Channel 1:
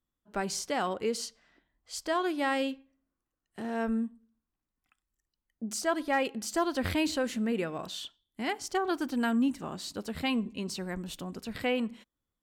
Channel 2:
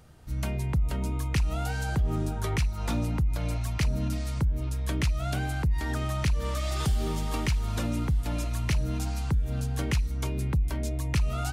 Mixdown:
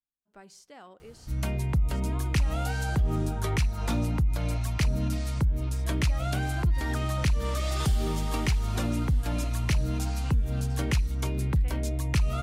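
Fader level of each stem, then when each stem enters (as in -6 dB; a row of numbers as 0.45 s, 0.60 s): -18.0 dB, +1.0 dB; 0.00 s, 1.00 s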